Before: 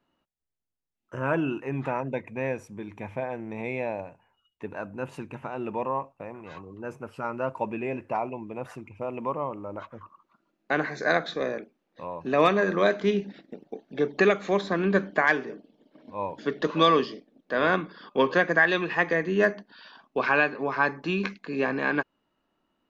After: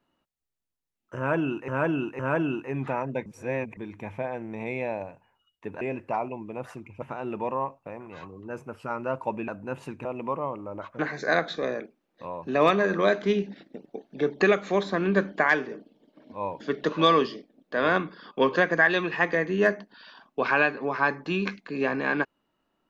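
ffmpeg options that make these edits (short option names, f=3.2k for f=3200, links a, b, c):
-filter_complex "[0:a]asplit=10[a][b][c][d][e][f][g][h][i][j];[a]atrim=end=1.682[k];[b]atrim=start=1.168:end=1.682[l];[c]atrim=start=1.168:end=2.242[m];[d]atrim=start=2.238:end=2.752,asetpts=PTS-STARTPTS,areverse[n];[e]atrim=start=2.748:end=4.792[o];[f]atrim=start=7.818:end=9.032[p];[g]atrim=start=5.358:end=7.822[q];[h]atrim=start=4.788:end=5.362[r];[i]atrim=start=9.028:end=9.972[s];[j]atrim=start=10.768[t];[k][l]acrossfade=d=0.004:c1=hsin:c2=hsin[u];[u][m]acrossfade=d=0.004:c1=hsin:c2=hsin[v];[v][n]acrossfade=d=0.004:c1=hsin:c2=hsin[w];[w][o]acrossfade=d=0.004:c1=hsin:c2=hsin[x];[x][p]acrossfade=d=0.004:c1=hsin:c2=hsin[y];[y][q]acrossfade=d=0.004:c1=hsin:c2=hsin[z];[z][r]acrossfade=d=0.004:c1=hsin:c2=hsin[aa];[aa][s]acrossfade=d=0.004:c1=hsin:c2=hsin[ab];[ab][t]acrossfade=d=0.004:c1=hsin:c2=hsin"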